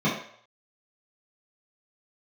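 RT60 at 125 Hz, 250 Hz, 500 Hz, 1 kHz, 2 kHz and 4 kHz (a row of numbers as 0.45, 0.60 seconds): 0.40, 0.40, 0.60, 0.60, 0.60, 0.55 seconds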